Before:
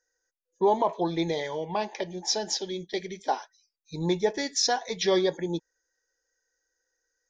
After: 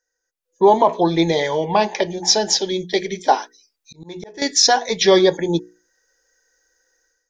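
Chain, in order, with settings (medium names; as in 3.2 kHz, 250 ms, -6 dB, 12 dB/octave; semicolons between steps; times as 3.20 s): hum notches 60/120/180/240/300/360/420/480 Hz; 3.28–4.42 s: slow attack 765 ms; level rider gain up to 14 dB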